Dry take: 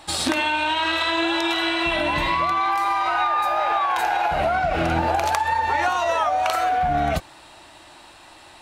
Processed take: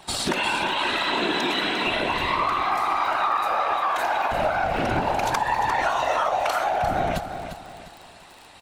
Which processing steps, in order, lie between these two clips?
random phases in short frames
surface crackle 35 per second −32 dBFS
on a send: repeating echo 350 ms, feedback 36%, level −9.5 dB
on the sum: level −2.5 dB

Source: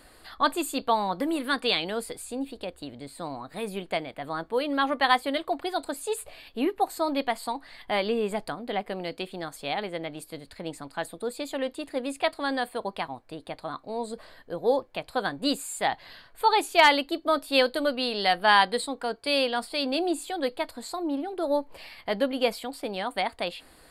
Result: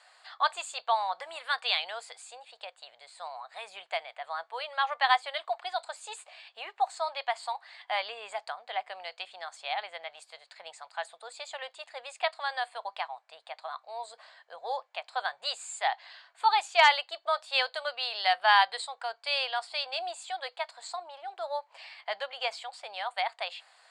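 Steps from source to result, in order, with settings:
elliptic band-pass filter 710–7,500 Hz, stop band 40 dB
level −1.5 dB

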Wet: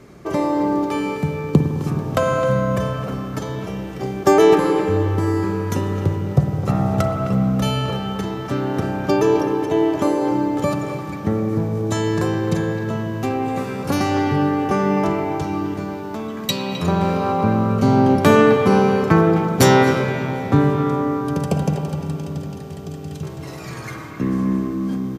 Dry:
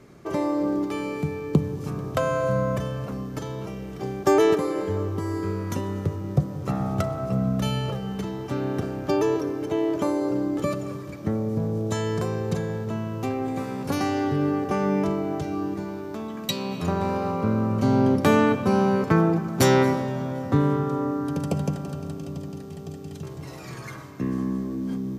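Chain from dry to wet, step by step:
far-end echo of a speakerphone 260 ms, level −9 dB
spring reverb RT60 3.4 s, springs 52 ms, chirp 70 ms, DRR 5 dB
level +5.5 dB

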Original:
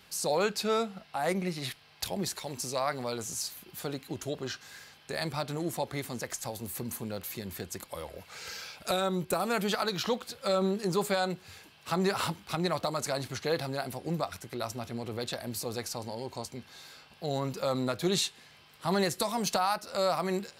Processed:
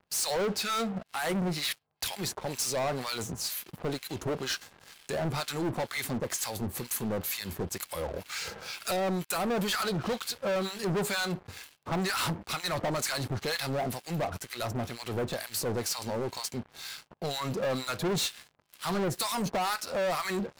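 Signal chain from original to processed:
two-band tremolo in antiphase 2.1 Hz, depth 100%, crossover 1,100 Hz
leveller curve on the samples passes 5
level −6.5 dB

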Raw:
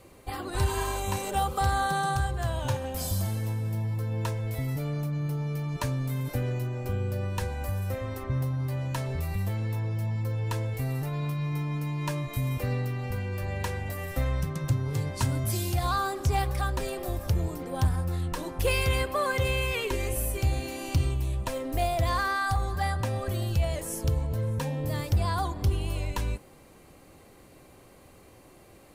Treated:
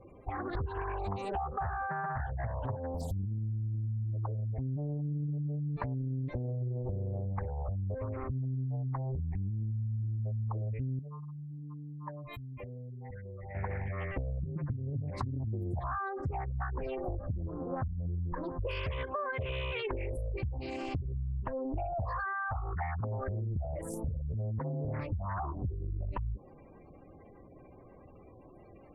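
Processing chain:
dynamic equaliser 1,500 Hz, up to +3 dB, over −45 dBFS, Q 1.7
gate on every frequency bin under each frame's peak −15 dB strong
low-pass filter 3,100 Hz 6 dB per octave
downward compressor 16 to 1, threshold −31 dBFS, peak gain reduction 12.5 dB
0:10.99–0:13.55: low-shelf EQ 490 Hz −10.5 dB
highs frequency-modulated by the lows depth 0.74 ms

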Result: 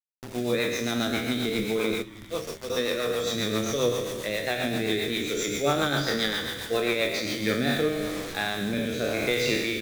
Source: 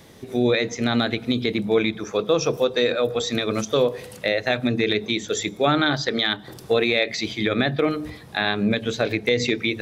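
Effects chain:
peak hold with a decay on every bin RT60 1.90 s
0:02.02–0:02.70: noise gate −14 dBFS, range −19 dB
bit reduction 5 bits
flanger 0.26 Hz, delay 8.3 ms, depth 6.6 ms, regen +64%
rotating-speaker cabinet horn 7.5 Hz, later 0.9 Hz, at 0:07.12
echo with shifted repeats 310 ms, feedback 62%, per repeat −120 Hz, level −20 dB
level −2.5 dB

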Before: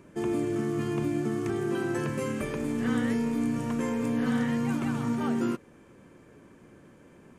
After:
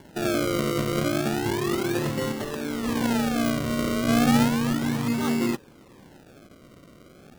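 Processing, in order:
0:02.32–0:03.01: high-pass filter 290 Hz 6 dB per octave
0:04.08–0:04.48: spectral tilt −2 dB per octave
sample-and-hold swept by an LFO 35×, swing 100% 0.33 Hz
level +3.5 dB

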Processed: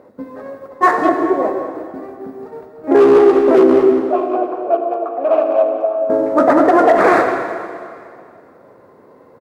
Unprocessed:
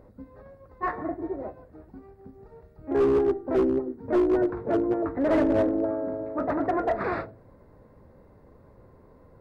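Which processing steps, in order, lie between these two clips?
running median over 9 samples
high-pass filter 290 Hz 12 dB per octave
noise gate −53 dBFS, range −7 dB
0:03.92–0:06.10: formant filter a
far-end echo of a speakerphone 200 ms, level −12 dB
convolution reverb RT60 2.3 s, pre-delay 53 ms, DRR 7 dB
boost into a limiter +19 dB
level −1 dB

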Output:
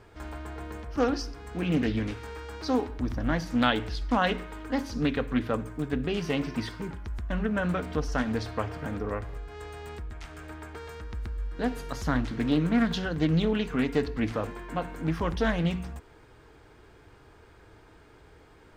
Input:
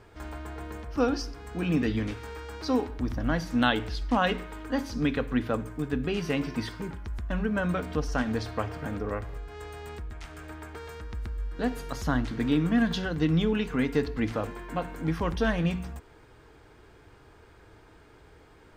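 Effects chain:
highs frequency-modulated by the lows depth 0.26 ms

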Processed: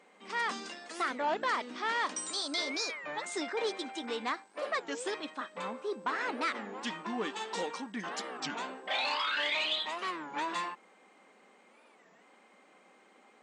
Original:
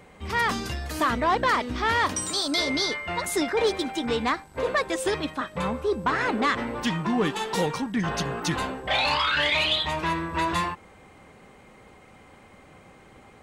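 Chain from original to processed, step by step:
linear-phase brick-wall band-pass 180–9,200 Hz
low-shelf EQ 280 Hz −8.5 dB
wow of a warped record 33 1/3 rpm, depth 250 cents
level −8 dB

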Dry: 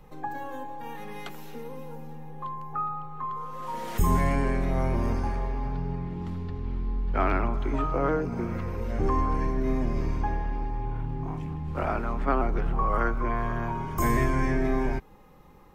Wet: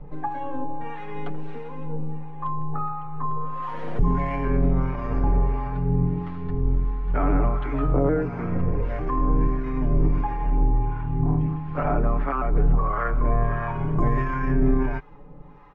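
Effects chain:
low-pass filter 2,000 Hz 12 dB per octave
low-shelf EQ 140 Hz +4 dB
comb filter 6.9 ms, depth 78%
brickwall limiter −17.5 dBFS, peak gain reduction 10 dB
two-band tremolo in antiphase 1.5 Hz, depth 70%, crossover 780 Hz
level +7 dB

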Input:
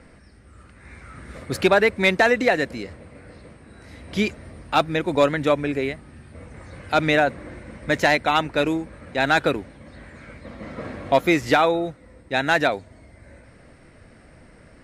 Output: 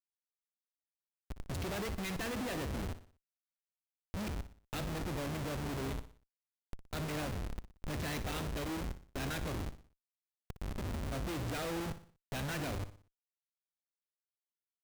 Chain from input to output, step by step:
noise gate −35 dBFS, range −12 dB
guitar amp tone stack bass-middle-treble 10-0-1
hum with harmonics 100 Hz, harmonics 21, −68 dBFS −7 dB per octave
comparator with hysteresis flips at −53.5 dBFS
on a send: repeating echo 60 ms, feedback 42%, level −13 dB
on the sum: level +9 dB

